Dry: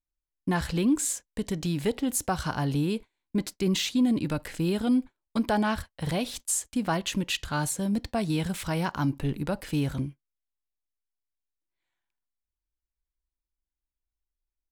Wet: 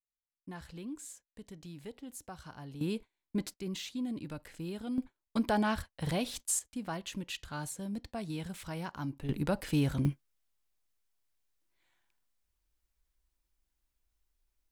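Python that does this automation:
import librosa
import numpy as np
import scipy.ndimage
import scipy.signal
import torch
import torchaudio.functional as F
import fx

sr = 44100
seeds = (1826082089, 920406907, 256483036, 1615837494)

y = fx.gain(x, sr, db=fx.steps((0.0, -18.5), (2.81, -6.0), (3.54, -13.0), (4.98, -4.0), (6.59, -11.0), (9.29, -1.5), (10.05, 8.5)))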